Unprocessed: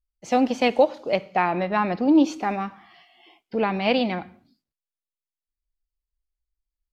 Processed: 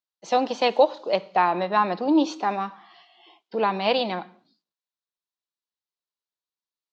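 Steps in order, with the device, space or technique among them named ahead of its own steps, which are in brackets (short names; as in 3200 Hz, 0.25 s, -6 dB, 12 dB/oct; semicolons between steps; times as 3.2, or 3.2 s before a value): television speaker (speaker cabinet 190–6700 Hz, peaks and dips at 250 Hz -10 dB, 1000 Hz +6 dB, 2200 Hz -6 dB, 3900 Hz +7 dB)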